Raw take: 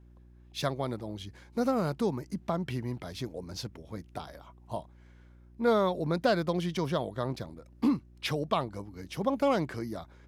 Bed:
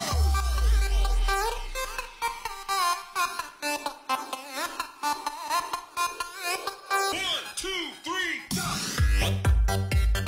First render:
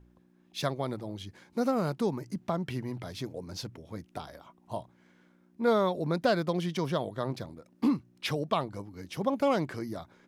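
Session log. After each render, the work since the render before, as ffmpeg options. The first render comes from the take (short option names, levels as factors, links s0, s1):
-af "bandreject=f=60:t=h:w=4,bandreject=f=120:t=h:w=4"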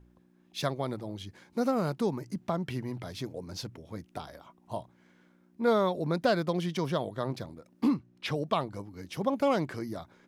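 -filter_complex "[0:a]asettb=1/sr,asplit=3[s0][s1][s2];[s0]atrim=end=7.944[s3];[s1]atrim=start=7.94:end=8.35,asetpts=PTS-STARTPTS,afade=t=in:d=0.004:c=qsin,afade=t=out:st=0.406:d=0.004:c=qsin,lowpass=f=3800:p=1[s4];[s2]atrim=start=8.346[s5];[s3][s4]acrossfade=d=0.004:c1=hsin:c2=qsin[s6];[s6][s5]acrossfade=d=0.004:c1=qsin:c2=hsin"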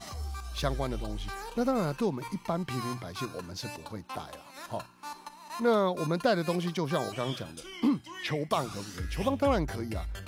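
-filter_complex "[1:a]volume=0.211[s0];[0:a][s0]amix=inputs=2:normalize=0"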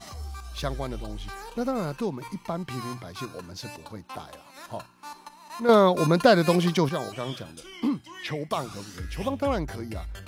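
-filter_complex "[0:a]asplit=3[s0][s1][s2];[s0]atrim=end=5.692[s3];[s1]atrim=start=5.688:end=6.892,asetpts=PTS-STARTPTS,volume=2.66[s4];[s2]atrim=start=6.888[s5];[s3][s4]acrossfade=d=0.004:c1=hsin:c2=hsin[s6];[s6][s5]acrossfade=d=0.004:c1=hsin:c2=hsin"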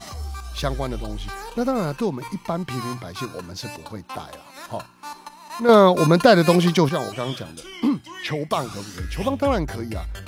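-af "volume=1.88,alimiter=limit=0.708:level=0:latency=1"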